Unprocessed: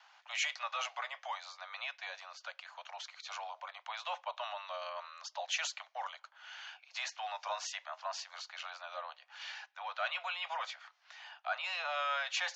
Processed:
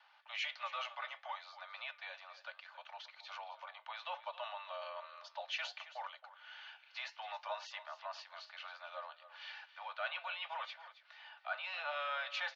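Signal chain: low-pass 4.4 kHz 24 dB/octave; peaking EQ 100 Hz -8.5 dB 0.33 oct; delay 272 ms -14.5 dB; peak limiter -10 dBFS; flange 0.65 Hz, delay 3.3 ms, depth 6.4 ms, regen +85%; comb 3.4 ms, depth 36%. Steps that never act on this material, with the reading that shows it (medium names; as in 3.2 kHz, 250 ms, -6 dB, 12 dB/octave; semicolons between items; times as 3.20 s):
peaking EQ 100 Hz: input has nothing below 450 Hz; peak limiter -10 dBFS: peak at its input -23.0 dBFS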